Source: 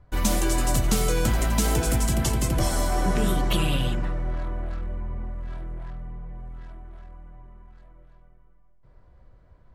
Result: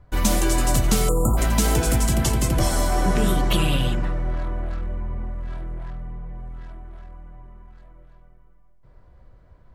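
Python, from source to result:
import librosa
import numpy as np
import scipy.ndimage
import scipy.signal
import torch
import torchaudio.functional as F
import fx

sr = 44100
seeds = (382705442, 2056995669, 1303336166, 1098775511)

y = fx.spec_erase(x, sr, start_s=1.08, length_s=0.29, low_hz=1400.0, high_hz=6800.0)
y = y * librosa.db_to_amplitude(3.0)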